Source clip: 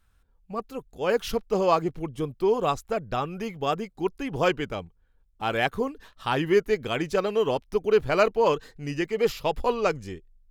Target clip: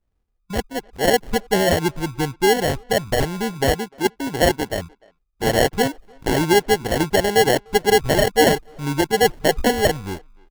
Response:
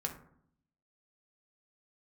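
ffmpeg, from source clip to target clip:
-filter_complex "[0:a]afwtdn=0.02,asplit=3[s0][s1][s2];[s0]afade=t=out:st=1.24:d=0.02[s3];[s1]equalizer=f=1800:w=0.5:g=-11,afade=t=in:st=1.24:d=0.02,afade=t=out:st=2.77:d=0.02[s4];[s2]afade=t=in:st=2.77:d=0.02[s5];[s3][s4][s5]amix=inputs=3:normalize=0,asettb=1/sr,asplit=3[s6][s7][s8];[s6]atrim=end=3.724[s9];[s7]atrim=start=3.72:end=4.77,asetpts=PTS-STARTPTS,afade=t=in:d=0.004:c=qsin,afade=t=out:st=1.046:d=0.004:c=qsin,highpass=f=230:p=1[s10];[s8]atrim=start=4.766[s11];[s9][s10]acrossfade=d=0.004:c1=hsin:c2=qsin[s12];[s12][s11]acrossfade=d=0.004:c1=qsin:c2=hsin,alimiter=limit=0.188:level=0:latency=1:release=161,acrusher=samples=36:mix=1:aa=0.000001,asplit=2[s13][s14];[s14]adelay=300,highpass=300,lowpass=3400,asoftclip=type=hard:threshold=0.0596,volume=0.0562[s15];[s13][s15]amix=inputs=2:normalize=0,volume=2.66"

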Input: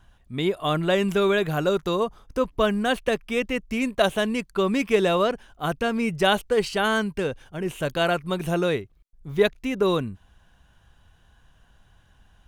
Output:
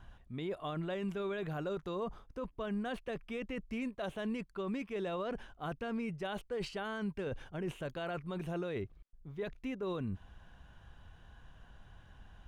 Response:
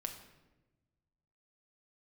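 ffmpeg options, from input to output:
-af "lowpass=f=2600:p=1,areverse,acompressor=threshold=0.02:ratio=10,areverse,alimiter=level_in=2.37:limit=0.0631:level=0:latency=1:release=18,volume=0.422,volume=1.19"

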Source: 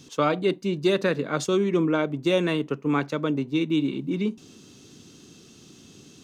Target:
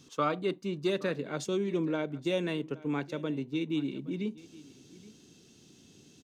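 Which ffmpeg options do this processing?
-af "asetnsamples=n=441:p=0,asendcmd='0.9 equalizer g -8',equalizer=f=1200:t=o:w=0.33:g=5,aecho=1:1:820:0.0944,volume=0.398"

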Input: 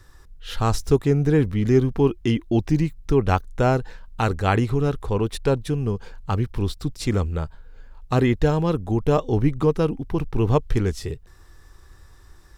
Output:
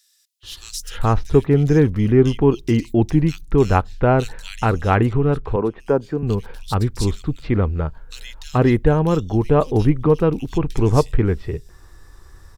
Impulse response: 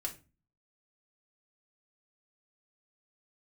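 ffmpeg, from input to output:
-filter_complex "[0:a]asettb=1/sr,asplit=3[s0][s1][s2];[s0]atrim=end=5.134[s3];[s1]atrim=start=5.13:end=5.8,asetpts=PTS-STARTPTS,afade=t=in:d=0.004:c=qsin,afade=t=out:st=0.666:d=0.004:c=qsin,acrossover=split=180 2000:gain=0.2 1 0.0708[s4][s5][s6];[s4][s5][s6]amix=inputs=3:normalize=0[s7];[s2]atrim=start=5.796[s8];[s3][s7]acrossfade=d=0.004:c1=hsin:c2=qsin[s9];[s9][s8]acrossfade=d=0.004:c1=qsin:c2=hsin,acrossover=split=2900[s10][s11];[s10]adelay=430[s12];[s12][s11]amix=inputs=2:normalize=0,asplit=2[s13][s14];[1:a]atrim=start_sample=2205,asetrate=57330,aresample=44100[s15];[s14][s15]afir=irnorm=-1:irlink=0,volume=0.0794[s16];[s13][s16]amix=inputs=2:normalize=0,volume=1.5"

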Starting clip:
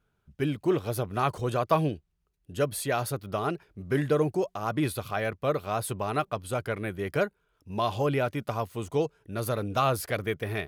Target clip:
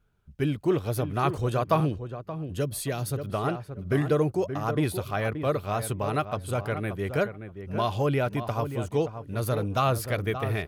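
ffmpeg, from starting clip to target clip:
-filter_complex "[0:a]lowshelf=f=110:g=8.5,asplit=2[s0][s1];[s1]adelay=577,lowpass=f=1600:p=1,volume=0.355,asplit=2[s2][s3];[s3]adelay=577,lowpass=f=1600:p=1,volume=0.16[s4];[s0][s2][s4]amix=inputs=3:normalize=0,asettb=1/sr,asplit=3[s5][s6][s7];[s5]atrim=end=1.804[s8];[s6]atrim=start=1.8:end=3.3,asetpts=PTS-STARTPTS,afade=t=in:d=0.004:c=qsin,afade=t=out:st=1.496:d=0.004:c=qsin,acrossover=split=450|3000[s9][s10][s11];[s10]acompressor=threshold=0.0141:ratio=4[s12];[s9][s12][s11]amix=inputs=3:normalize=0[s13];[s7]atrim=start=3.296[s14];[s8][s13]acrossfade=d=0.004:c1=hsin:c2=qsin[s15];[s15][s14]acrossfade=d=0.004:c1=qsin:c2=hsin"

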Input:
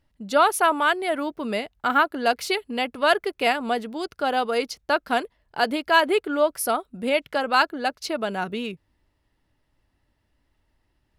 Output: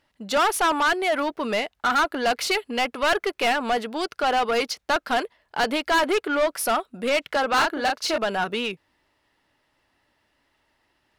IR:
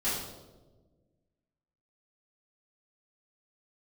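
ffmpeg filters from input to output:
-filter_complex "[0:a]asettb=1/sr,asplit=3[s0][s1][s2];[s0]atrim=end=7.534[s3];[s1]atrim=start=7.53:end=8.18,asetpts=PTS-STARTPTS,afade=t=in:d=0.004:c=qsin,afade=t=out:st=0.646:d=0.004:c=qsin,asplit=2[s4][s5];[s5]adelay=34,volume=0.562[s6];[s4][s6]amix=inputs=2:normalize=0,atrim=end_sample=28665[s7];[s2]atrim=start=8.176[s8];[s3][s7]acrossfade=d=0.004:c1=hsin:c2=qsin[s9];[s9][s8]acrossfade=d=0.004:c1=qsin:c2=hsin,asplit=2[s10][s11];[s11]highpass=f=720:p=1,volume=15.8,asoftclip=type=tanh:threshold=0.596[s12];[s10][s12]amix=inputs=2:normalize=0,lowpass=f=5500:p=1,volume=0.501,volume=0.376"

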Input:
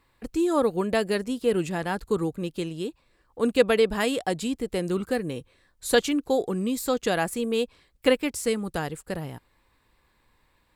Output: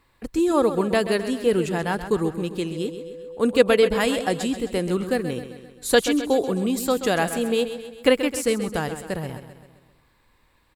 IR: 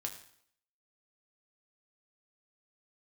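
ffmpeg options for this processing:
-filter_complex "[0:a]asettb=1/sr,asplit=3[s0][s1][s2];[s0]atrim=end=2.764[s3];[s1]atrim=start=2.76:end=4.43,asetpts=PTS-STARTPTS,afade=t=in:d=0.004:c=qsin,afade=t=out:st=1.666:d=0.004:c=qsin,aeval=exprs='val(0)+0.0158*sin(2*PI*500*n/s)':c=same[s4];[s2]atrim=start=4.426[s5];[s3][s4]acrossfade=d=0.004:c1=hsin:c2=qsin[s6];[s6][s5]acrossfade=d=0.004:c1=qsin:c2=hsin,aecho=1:1:131|262|393|524|655|786:0.282|0.152|0.0822|0.0444|0.024|0.0129,volume=1.41"

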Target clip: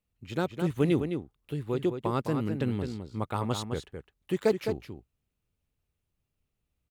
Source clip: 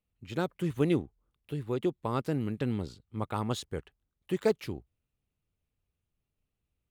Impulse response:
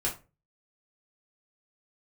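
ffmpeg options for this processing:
-filter_complex "[0:a]asplit=2[s0][s1];[s1]adelay=209.9,volume=0.447,highshelf=f=4000:g=-4.72[s2];[s0][s2]amix=inputs=2:normalize=0,volume=1.19"

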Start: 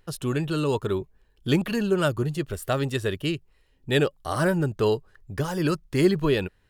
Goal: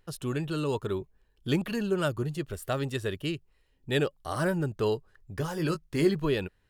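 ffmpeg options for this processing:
-filter_complex "[0:a]asettb=1/sr,asplit=3[s0][s1][s2];[s0]atrim=end=5.394[s3];[s1]atrim=start=5.39:end=6.15,asetpts=PTS-STARTPTS,afade=t=in:d=0.004:c=qsin,afade=t=out:st=0.756:d=0.004:c=qsin,asplit=2[s4][s5];[s5]adelay=19,volume=0.376[s6];[s4][s6]amix=inputs=2:normalize=0,atrim=end_sample=33516[s7];[s2]atrim=start=6.146[s8];[s3][s7]acrossfade=d=0.004:c1=hsin:c2=qsin[s9];[s9][s8]acrossfade=d=0.004:c1=qsin:c2=hsin,volume=0.562"

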